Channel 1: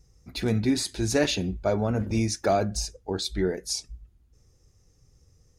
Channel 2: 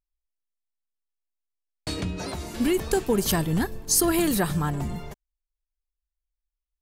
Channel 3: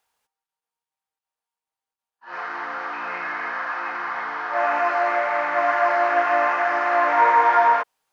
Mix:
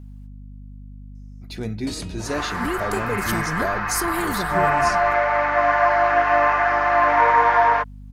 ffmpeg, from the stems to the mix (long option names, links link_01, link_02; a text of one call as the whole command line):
ffmpeg -i stem1.wav -i stem2.wav -i stem3.wav -filter_complex "[0:a]adelay=1150,volume=-4dB[link_01];[1:a]volume=-4.5dB[link_02];[2:a]aecho=1:1:6.8:0.57,aeval=exprs='val(0)+0.0126*(sin(2*PI*50*n/s)+sin(2*PI*2*50*n/s)/2+sin(2*PI*3*50*n/s)/3+sin(2*PI*4*50*n/s)/4+sin(2*PI*5*50*n/s)/5)':channel_layout=same,volume=0.5dB[link_03];[link_01][link_02][link_03]amix=inputs=3:normalize=0" out.wav